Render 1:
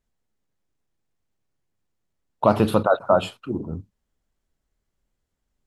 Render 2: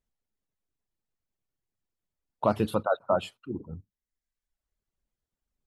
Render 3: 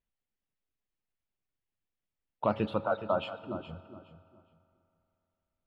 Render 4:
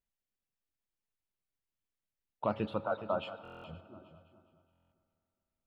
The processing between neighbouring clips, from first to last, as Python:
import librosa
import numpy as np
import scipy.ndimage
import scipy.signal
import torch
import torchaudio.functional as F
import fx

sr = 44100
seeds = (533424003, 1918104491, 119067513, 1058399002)

y1 = fx.dereverb_blind(x, sr, rt60_s=0.95)
y1 = y1 * 10.0 ** (-7.0 / 20.0)
y2 = fx.lowpass_res(y1, sr, hz=2900.0, q=1.6)
y2 = fx.echo_feedback(y2, sr, ms=417, feedback_pct=21, wet_db=-12)
y2 = fx.rev_fdn(y2, sr, rt60_s=3.0, lf_ratio=1.0, hf_ratio=0.7, size_ms=11.0, drr_db=14.0)
y2 = y2 * 10.0 ** (-4.5 / 20.0)
y3 = fx.echo_feedback(y2, sr, ms=520, feedback_pct=29, wet_db=-22)
y3 = fx.buffer_glitch(y3, sr, at_s=(3.43, 4.71), block=1024, repeats=8)
y3 = y3 * 10.0 ** (-4.0 / 20.0)